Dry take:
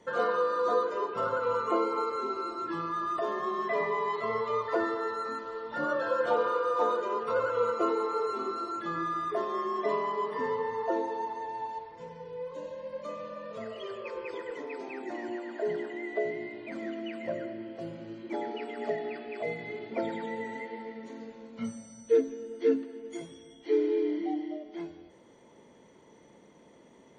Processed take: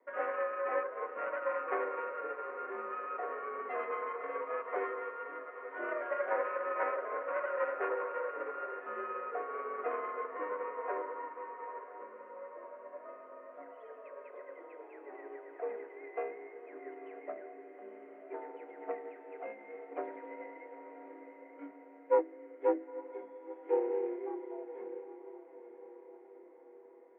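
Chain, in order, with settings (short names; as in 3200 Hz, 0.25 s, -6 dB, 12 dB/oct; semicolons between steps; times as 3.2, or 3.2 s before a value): self-modulated delay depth 0.28 ms; mistuned SSB +54 Hz 230–2100 Hz; diffused feedback echo 0.932 s, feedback 57%, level -8 dB; upward expander 1.5:1, over -38 dBFS; gain -2.5 dB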